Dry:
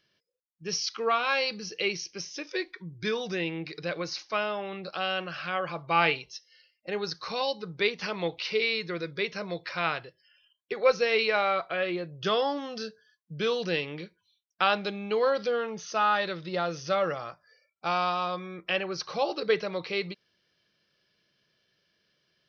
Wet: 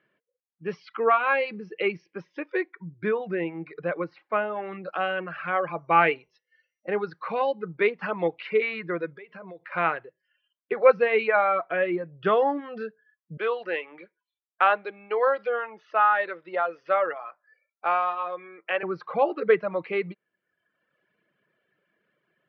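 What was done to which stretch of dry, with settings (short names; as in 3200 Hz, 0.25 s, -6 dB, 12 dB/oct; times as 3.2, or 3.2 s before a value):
2.7–4.56 high shelf 2400 Hz -8 dB
5.42–7.31 whine 5800 Hz -59 dBFS
9.16–9.72 compressor 16:1, threshold -41 dBFS
13.37–18.83 HPF 530 Hz
whole clip: LPF 2100 Hz 24 dB/oct; reverb removal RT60 1 s; HPF 180 Hz; gain +6 dB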